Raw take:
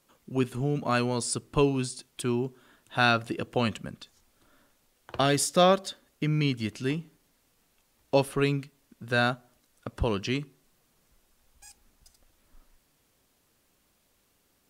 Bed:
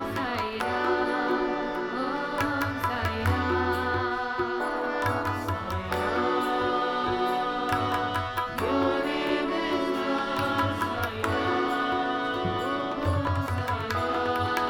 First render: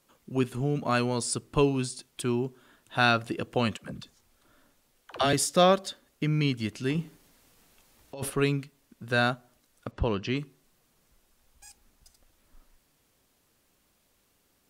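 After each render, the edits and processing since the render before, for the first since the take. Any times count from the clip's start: 3.77–5.33 dispersion lows, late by 70 ms, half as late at 340 Hz; 6.95–8.3 negative-ratio compressor -33 dBFS; 9.91–10.37 air absorption 120 m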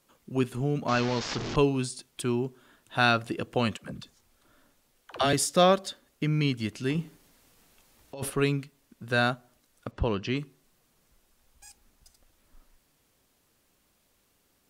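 0.88–1.56 delta modulation 32 kbps, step -27.5 dBFS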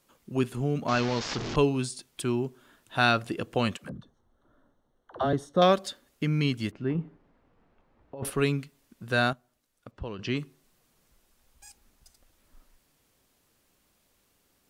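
3.89–5.62 running mean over 18 samples; 6.71–8.25 LPF 1300 Hz; 9.33–10.19 gain -9.5 dB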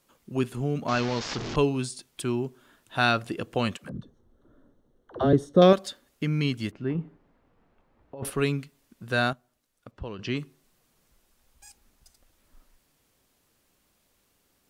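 3.94–5.73 resonant low shelf 580 Hz +6.5 dB, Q 1.5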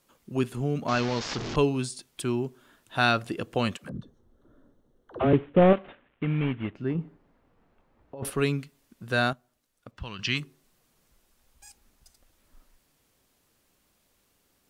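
5.19–6.75 CVSD 16 kbps; 9.97–10.4 EQ curve 180 Hz 0 dB, 450 Hz -10 dB, 1100 Hz +3 dB, 2700 Hz +9 dB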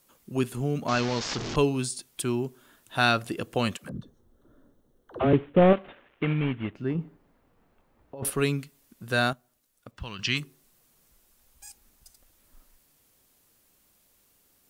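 5.96–6.33 spectral gain 310–6700 Hz +6 dB; high shelf 8300 Hz +10.5 dB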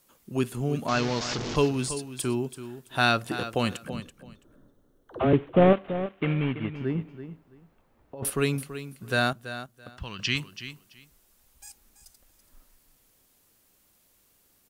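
feedback echo 0.332 s, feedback 19%, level -12 dB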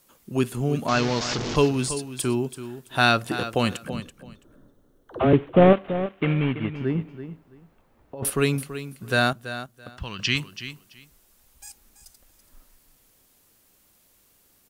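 gain +3.5 dB

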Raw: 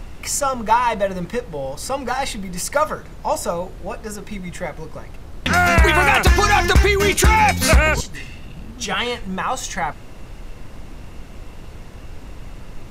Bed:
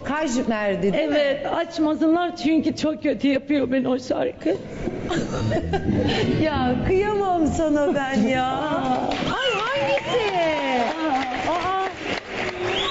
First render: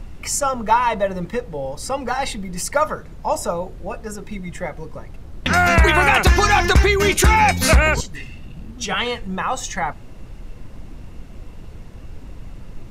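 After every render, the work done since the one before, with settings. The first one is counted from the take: denoiser 6 dB, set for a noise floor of -37 dBFS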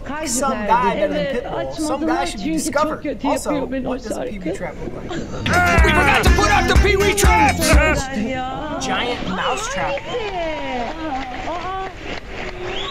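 add bed -2.5 dB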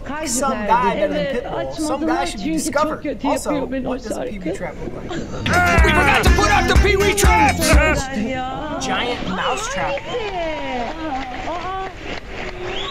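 nothing audible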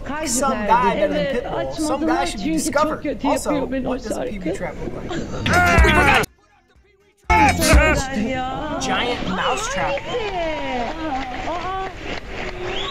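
6.24–7.3 flipped gate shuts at -15 dBFS, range -41 dB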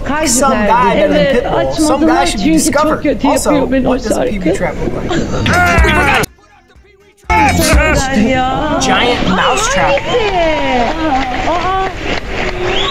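maximiser +11.5 dB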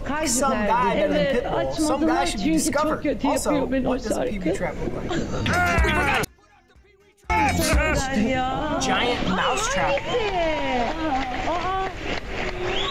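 gain -11 dB

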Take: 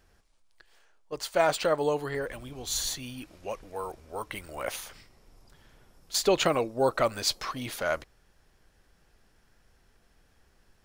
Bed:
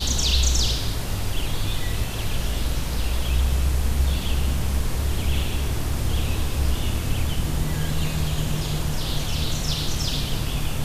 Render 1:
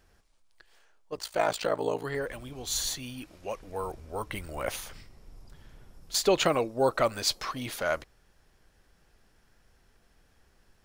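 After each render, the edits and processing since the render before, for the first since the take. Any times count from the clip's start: 1.14–2.05 ring modulator 28 Hz; 3.67–6.15 low shelf 230 Hz +8.5 dB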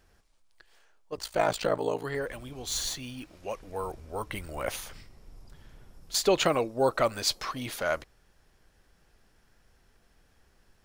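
1.17–1.78 low shelf 220 Hz +8 dB; 2.7–3.36 median filter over 3 samples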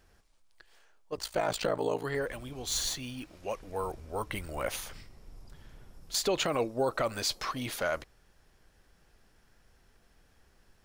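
limiter -19 dBFS, peak gain reduction 9 dB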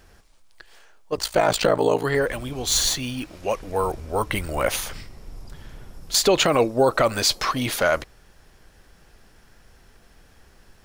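gain +11 dB

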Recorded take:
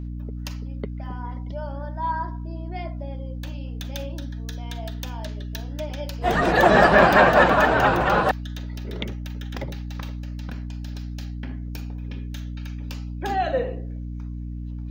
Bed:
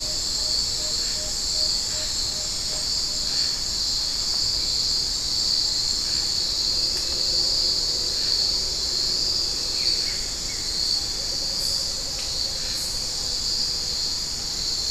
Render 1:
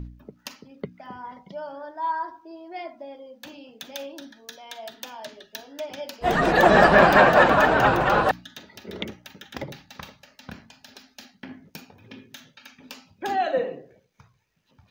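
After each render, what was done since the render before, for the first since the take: de-hum 60 Hz, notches 5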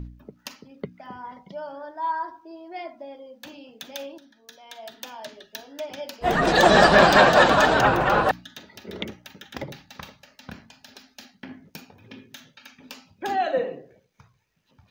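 4.18–5.08 fade in, from -13 dB; 6.47–7.81 band shelf 5400 Hz +9 dB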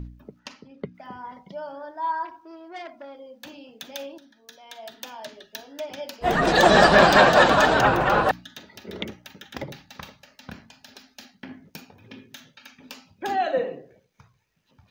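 0.39–0.95 air absorption 81 m; 2.25–3.17 core saturation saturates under 1600 Hz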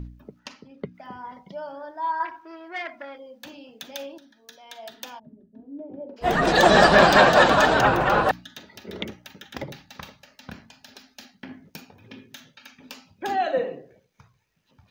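2.2–3.18 bell 1900 Hz +11.5 dB 1.3 oct; 5.18–6.16 synth low-pass 170 Hz -> 450 Hz, resonance Q 2.5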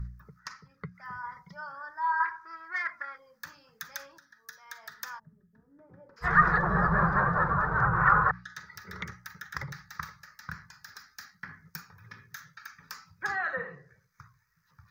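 treble ducked by the level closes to 650 Hz, closed at -14 dBFS; EQ curve 170 Hz 0 dB, 250 Hz -25 dB, 450 Hz -13 dB, 670 Hz -20 dB, 1200 Hz +8 dB, 1900 Hz +5 dB, 2900 Hz -19 dB, 5100 Hz +1 dB, 9600 Hz -4 dB, 14000 Hz +7 dB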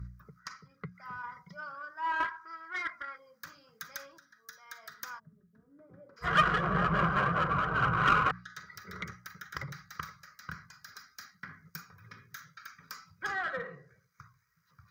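one diode to ground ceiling -24 dBFS; notch comb 890 Hz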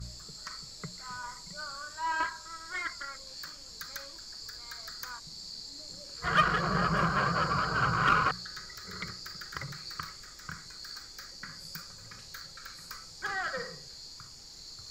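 add bed -21.5 dB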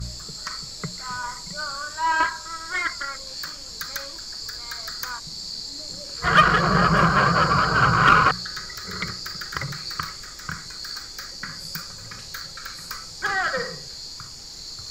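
gain +10 dB; limiter -2 dBFS, peak gain reduction 1.5 dB

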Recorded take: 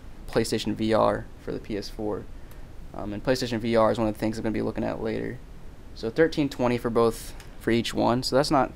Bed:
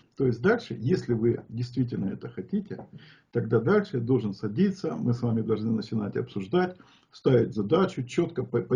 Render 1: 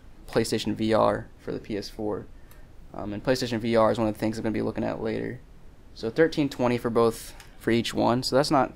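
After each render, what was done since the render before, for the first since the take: noise print and reduce 6 dB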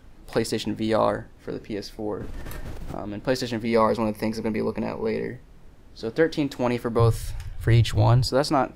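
2.2–3.01 fast leveller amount 100%; 3.65–5.27 ripple EQ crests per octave 0.85, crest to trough 10 dB; 6.99–8.27 resonant low shelf 150 Hz +13.5 dB, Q 3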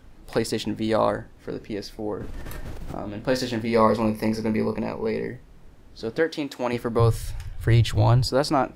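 2.94–4.78 flutter echo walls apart 4.7 m, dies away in 0.22 s; 6.19–6.73 HPF 390 Hz 6 dB/oct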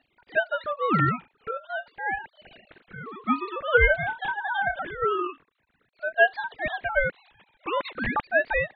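sine-wave speech; ring modulator with a swept carrier 1000 Hz, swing 25%, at 0.46 Hz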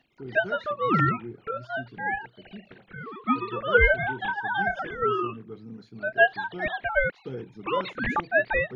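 add bed -15 dB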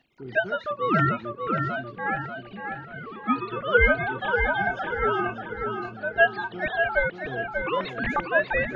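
darkening echo 0.588 s, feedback 45%, low-pass 4300 Hz, level -5.5 dB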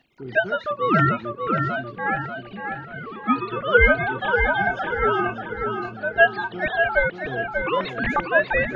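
gain +3.5 dB

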